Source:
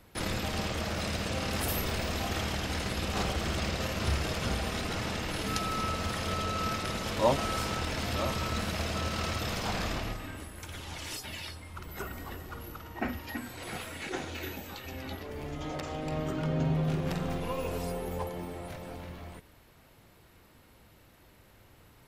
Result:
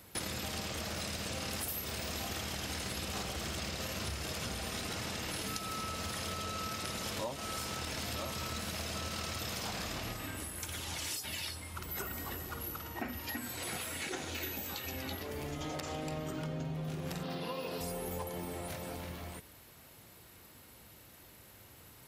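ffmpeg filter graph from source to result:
ffmpeg -i in.wav -filter_complex "[0:a]asettb=1/sr,asplit=3[link_01][link_02][link_03];[link_01]atrim=end=17.234[link_04];[link_02]atrim=start=17.23:end=17.81,asetpts=PTS-STARTPTS,afade=type=in:duration=0.004:curve=qsin,afade=type=out:start_time=0.576:duration=0.004:curve=qsin,highpass=frequency=130:width=0.5412,highpass=frequency=130:width=1.3066,highshelf=frequency=5700:width_type=q:width=3:gain=-7,bandreject=frequency=2300:width=12[link_05];[link_03]atrim=start=17.806[link_06];[link_04][link_05]acrossfade=duration=0.004:curve1=hsin:curve2=qsin[link_07];[link_07][link_06]acrossfade=duration=0.004:curve1=qsin:curve2=hsin,highpass=58,highshelf=frequency=4700:gain=11,acompressor=threshold=-35dB:ratio=12" out.wav

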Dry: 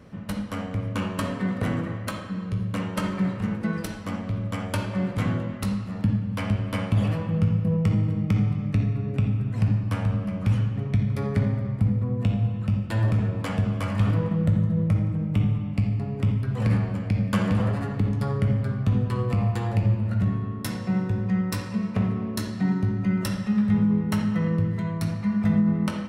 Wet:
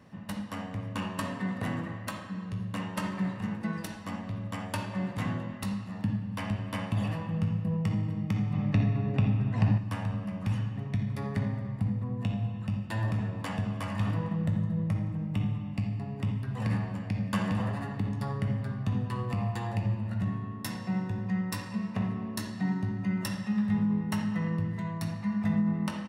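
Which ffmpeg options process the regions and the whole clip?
ffmpeg -i in.wav -filter_complex "[0:a]asettb=1/sr,asplit=3[link_01][link_02][link_03];[link_01]atrim=end=8.534[link_04];[link_02]atrim=start=8.53:end=9.78,asetpts=PTS-STARTPTS,afade=type=in:duration=0.004:curve=qsin,afade=type=out:start_time=1.246:duration=0.004:curve=qsin,lowpass=5100,equalizer=frequency=660:width=1.1:gain=3.5,acontrast=39[link_05];[link_03]atrim=start=9.776[link_06];[link_04][link_05]acrossfade=duration=0.004:curve1=hsin:curve2=qsin[link_07];[link_07][link_06]acrossfade=duration=0.004:curve1=qsin:curve2=hsin,highpass=frequency=190:poles=1,aecho=1:1:1.1:0.42,volume=-4.5dB" out.wav

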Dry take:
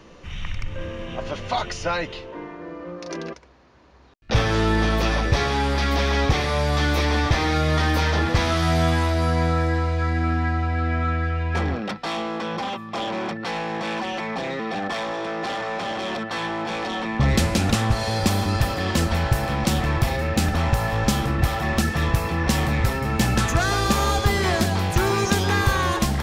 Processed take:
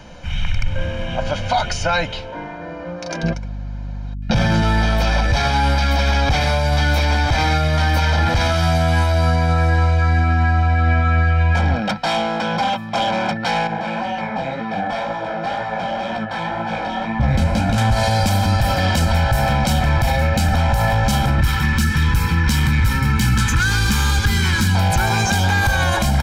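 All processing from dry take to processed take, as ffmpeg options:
ffmpeg -i in.wav -filter_complex "[0:a]asettb=1/sr,asplit=3[link_01][link_02][link_03];[link_01]atrim=end=3.234[link_04];[link_02]atrim=start=3.23:end=4.62,asetpts=PTS-STARTPTS,afade=type=in:duration=0.004:curve=qsin,afade=type=out:start_time=1.386:duration=0.004:curve=qsin,equalizer=frequency=190:width_type=o:width=1.6:gain=9.5,aecho=1:1:5.7:0.43,atrim=end_sample=61299,aeval=exprs='val(0)+0.0158*(sin(2*PI*50*n/s)+sin(2*PI*2*50*n/s)/2+sin(2*PI*3*50*n/s)/3+sin(2*PI*4*50*n/s)/4+sin(2*PI*5*50*n/s)/5)':channel_layout=same[link_05];[link_03]atrim=start=4.616[link_06];[link_04][link_05]acrossfade=duration=0.004:curve1=hsin:curve2=qsin[link_07];[link_07][link_06]acrossfade=duration=0.004:curve1=qsin:curve2=hsin,asettb=1/sr,asplit=3[link_08][link_09][link_10];[link_08]atrim=end=13.674[link_11];[link_09]atrim=start=13.67:end=17.78,asetpts=PTS-STARTPTS,afade=type=in:duration=0.004:curve=qsin,afade=type=out:start_time=4.106:duration=0.004:curve=qsin,highshelf=frequency=3300:gain=-12,flanger=delay=17:depth=6.7:speed=2[link_12];[link_10]atrim=start=17.776[link_13];[link_11][link_12]acrossfade=duration=0.004:curve1=hsin:curve2=qsin[link_14];[link_14][link_13]acrossfade=duration=0.004:curve1=qsin:curve2=hsin,asettb=1/sr,asplit=3[link_15][link_16][link_17];[link_15]atrim=end=21.414[link_18];[link_16]atrim=start=21.41:end=24.75,asetpts=PTS-STARTPTS,afade=type=in:duration=0.004:curve=qsin,afade=type=out:start_time=3.336:duration=0.004:curve=qsin,asoftclip=type=hard:threshold=-15.5dB,asuperstop=centerf=650:order=4:qfactor=1.2[link_19];[link_17]atrim=start=24.746[link_20];[link_18][link_19]acrossfade=duration=0.004:curve1=hsin:curve2=qsin[link_21];[link_21][link_20]acrossfade=duration=0.004:curve1=qsin:curve2=hsin,aecho=1:1:1.3:0.77,alimiter=limit=-14.5dB:level=0:latency=1:release=37,volume=6dB" out.wav

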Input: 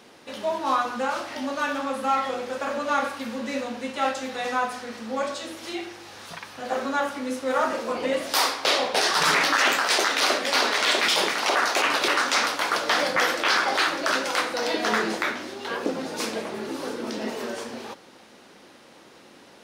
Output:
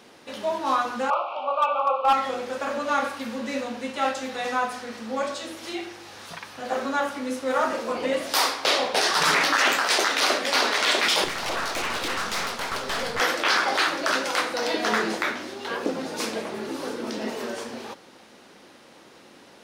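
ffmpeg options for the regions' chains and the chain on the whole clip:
ffmpeg -i in.wav -filter_complex "[0:a]asettb=1/sr,asplit=3[link_01][link_02][link_03];[link_01]atrim=end=1.104[link_04];[link_02]atrim=start=1.1:end=2.13,asetpts=PTS-STARTPTS,afade=type=in:duration=0.004:curve=qsin,afade=type=out:start_time=1.026:duration=0.004:curve=qsin,asuperstop=centerf=1800:order=12:qfactor=1.9,highpass=frequency=500:width=0.5412,highpass=frequency=500:width=1.3066,equalizer=frequency=530:width_type=q:width=4:gain=5,equalizer=frequency=760:width_type=q:width=4:gain=8,equalizer=frequency=1100:width_type=q:width=4:gain=9,equalizer=frequency=1700:width_type=q:width=4:gain=9,equalizer=frequency=2500:width_type=q:width=4:gain=3,lowpass=frequency=2900:width=0.5412,lowpass=frequency=2900:width=1.3066,asoftclip=type=hard:threshold=-14dB[link_05];[link_03]atrim=start=2.126[link_06];[link_04][link_05]acrossfade=duration=0.004:curve1=hsin:curve2=qsin[link_07];[link_07][link_06]acrossfade=duration=0.004:curve1=qsin:curve2=hsin,asettb=1/sr,asplit=3[link_08][link_09][link_10];[link_08]atrim=end=11.244[link_11];[link_09]atrim=start=11.24:end=13.2,asetpts=PTS-STARTPTS,afade=type=in:duration=0.004:curve=qsin,afade=type=out:start_time=1.956:duration=0.004:curve=qsin,afreqshift=-54,aeval=exprs='(tanh(15.8*val(0)+0.6)-tanh(0.6))/15.8':channel_layout=same[link_12];[link_10]atrim=start=13.196[link_13];[link_11][link_12]acrossfade=duration=0.004:curve1=hsin:curve2=qsin[link_14];[link_14][link_13]acrossfade=duration=0.004:curve1=qsin:curve2=hsin" out.wav

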